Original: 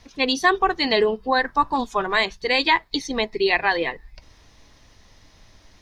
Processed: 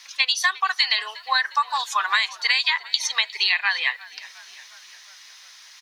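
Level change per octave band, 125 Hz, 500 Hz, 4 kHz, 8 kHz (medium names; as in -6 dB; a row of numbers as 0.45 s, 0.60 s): under -40 dB, -24.5 dB, +4.0 dB, +8.5 dB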